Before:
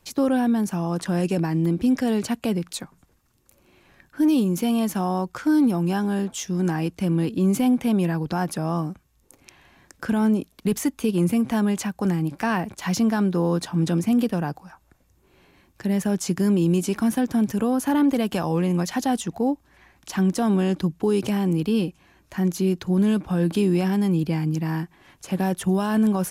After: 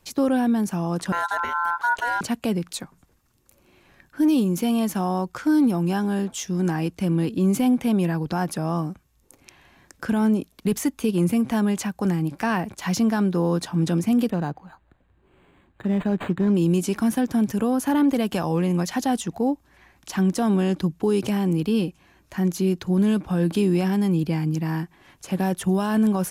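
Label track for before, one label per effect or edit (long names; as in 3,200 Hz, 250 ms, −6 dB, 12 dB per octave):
1.120000	2.210000	ring modulation 1,200 Hz
14.300000	16.550000	linearly interpolated sample-rate reduction rate divided by 8×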